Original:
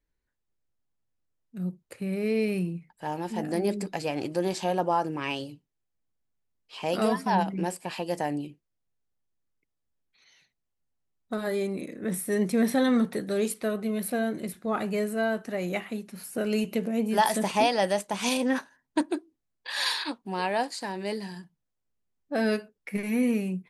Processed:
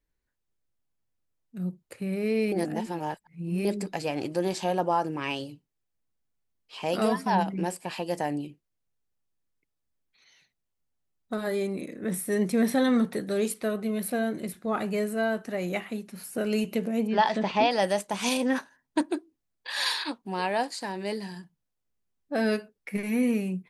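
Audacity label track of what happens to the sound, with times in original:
2.520000	3.650000	reverse
17.070000	17.710000	low-pass filter 4,500 Hz 24 dB per octave

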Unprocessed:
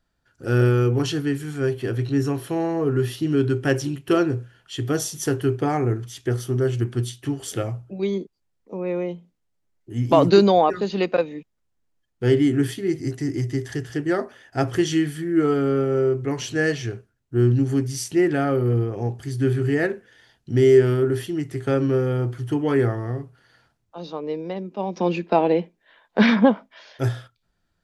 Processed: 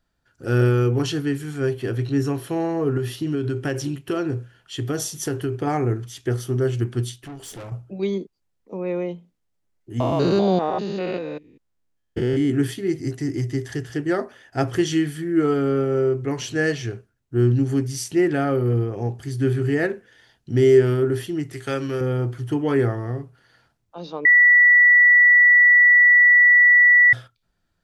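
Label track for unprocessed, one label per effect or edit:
2.970000	5.670000	downward compressor, threshold −20 dBFS
7.160000	7.720000	tube saturation drive 34 dB, bias 0.45
10.000000	12.500000	spectrum averaged block by block every 200 ms
21.530000	22.010000	tilt shelving filter lows −7 dB, about 1,200 Hz
24.250000	27.130000	beep over 1,950 Hz −9.5 dBFS

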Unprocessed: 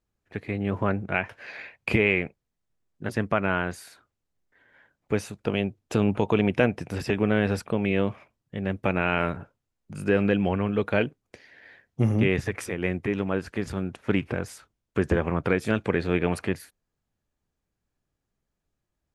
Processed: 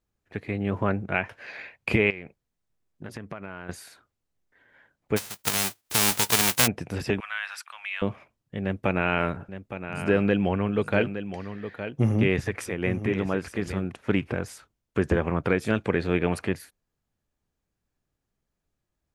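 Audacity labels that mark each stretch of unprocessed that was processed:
2.100000	3.690000	downward compressor 5 to 1, threshold −34 dBFS
5.160000	6.660000	spectral envelope flattened exponent 0.1
7.200000	8.020000	inverse Chebyshev high-pass filter stop band from 430 Hz, stop band 50 dB
8.620000	13.920000	single-tap delay 864 ms −10.5 dB

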